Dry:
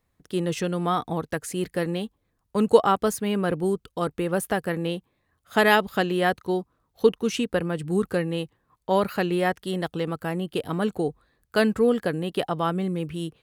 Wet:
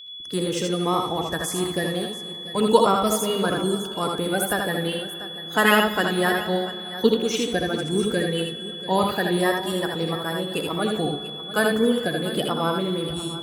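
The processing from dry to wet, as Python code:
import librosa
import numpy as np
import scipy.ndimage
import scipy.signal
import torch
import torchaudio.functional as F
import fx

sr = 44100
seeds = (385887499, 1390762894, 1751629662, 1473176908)

y = fx.spec_quant(x, sr, step_db=30)
y = fx.high_shelf(y, sr, hz=6100.0, db=8.0)
y = y + 10.0 ** (-39.0 / 20.0) * np.sin(2.0 * np.pi * 3400.0 * np.arange(len(y)) / sr)
y = fx.echo_multitap(y, sr, ms=(66, 80, 690), db=(-8.5, -5.0, -15.0))
y = fx.rev_plate(y, sr, seeds[0], rt60_s=3.7, hf_ratio=0.55, predelay_ms=0, drr_db=11.5)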